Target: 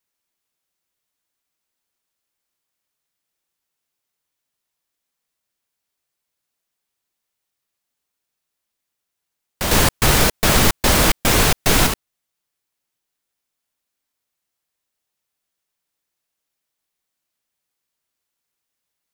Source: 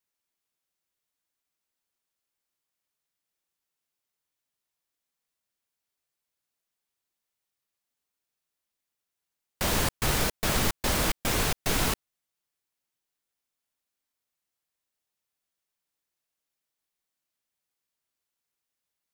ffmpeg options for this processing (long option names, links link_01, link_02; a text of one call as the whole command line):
ffmpeg -i in.wav -filter_complex "[0:a]asettb=1/sr,asplit=3[link_01][link_02][link_03];[link_01]atrim=end=9.714[link_04];[link_02]atrim=start=9.71:end=11.87,asetpts=PTS-STARTPTS,afade=type=in:duration=0.004:curve=qsin,afade=type=out:start_time=2.156:duration=0.004:curve=qsin,acontrast=49[link_05];[link_03]atrim=start=11.866[link_06];[link_04][link_05]acrossfade=duration=0.004:curve1=hsin:curve2=qsin[link_07];[link_07][link_06]acrossfade=duration=0.004:curve1=qsin:curve2=hsin,volume=5.5dB" out.wav